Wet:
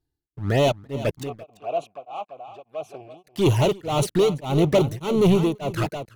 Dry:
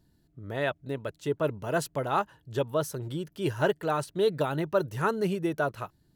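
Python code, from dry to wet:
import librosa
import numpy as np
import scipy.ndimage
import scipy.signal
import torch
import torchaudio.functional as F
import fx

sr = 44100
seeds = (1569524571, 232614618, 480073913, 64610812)

y = fx.peak_eq(x, sr, hz=800.0, db=3.5, octaves=0.26)
y = fx.leveller(y, sr, passes=5)
y = fx.env_flanger(y, sr, rest_ms=2.5, full_db=-14.5)
y = fx.vowel_filter(y, sr, vowel='a', at=(1.23, 3.27))
y = y + 10.0 ** (-12.0 / 20.0) * np.pad(y, (int(339 * sr / 1000.0), 0))[:len(y)]
y = y * np.abs(np.cos(np.pi * 1.7 * np.arange(len(y)) / sr))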